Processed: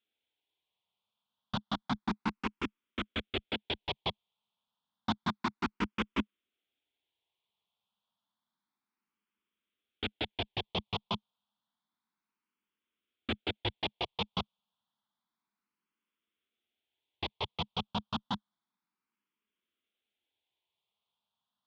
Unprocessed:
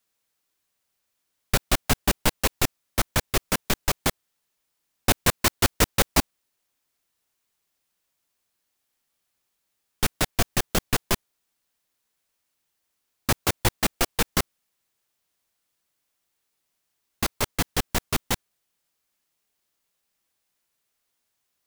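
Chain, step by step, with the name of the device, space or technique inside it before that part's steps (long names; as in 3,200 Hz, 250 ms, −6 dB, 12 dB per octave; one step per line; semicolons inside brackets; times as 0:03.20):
barber-pole phaser into a guitar amplifier (frequency shifter mixed with the dry sound +0.3 Hz; soft clipping −18 dBFS, distortion −14 dB; loudspeaker in its box 90–3,500 Hz, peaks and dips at 140 Hz −6 dB, 210 Hz +9 dB, 560 Hz −6 dB, 950 Hz +5 dB, 1,800 Hz −7 dB, 3,400 Hz +9 dB)
level −4.5 dB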